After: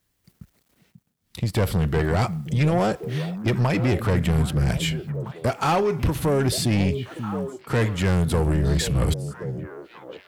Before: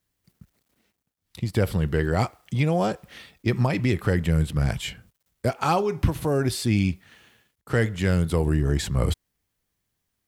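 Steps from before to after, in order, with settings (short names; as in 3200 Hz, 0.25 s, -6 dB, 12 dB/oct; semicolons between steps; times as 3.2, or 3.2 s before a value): soft clip -21.5 dBFS, distortion -10 dB; delay with a stepping band-pass 0.537 s, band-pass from 170 Hz, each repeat 1.4 oct, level -5.5 dB; gain +5.5 dB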